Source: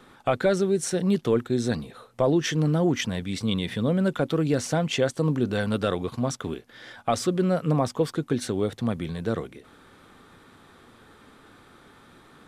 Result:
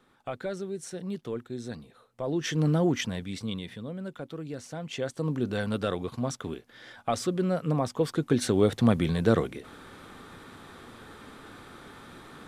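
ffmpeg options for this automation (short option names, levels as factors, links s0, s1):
-af "volume=7.94,afade=t=in:st=2.21:d=0.48:silence=0.281838,afade=t=out:st=2.69:d=1.16:silence=0.223872,afade=t=in:st=4.74:d=0.73:silence=0.316228,afade=t=in:st=7.91:d=0.91:silence=0.354813"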